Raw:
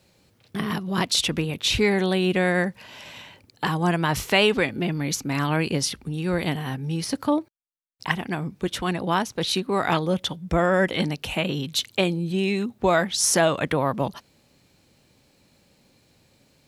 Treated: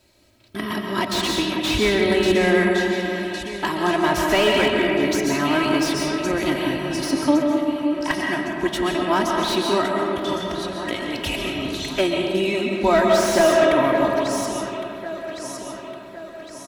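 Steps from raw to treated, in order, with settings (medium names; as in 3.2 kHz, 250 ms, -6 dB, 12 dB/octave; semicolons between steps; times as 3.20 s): comb 3.1 ms, depth 79%; de-hum 235.4 Hz, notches 36; 9.86–11.90 s: compressor with a negative ratio -32 dBFS, ratio -1; echo whose repeats swap between lows and highs 555 ms, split 2.3 kHz, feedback 70%, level -9 dB; algorithmic reverb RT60 2.1 s, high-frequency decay 0.45×, pre-delay 95 ms, DRR 1 dB; slew-rate limiter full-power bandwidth 270 Hz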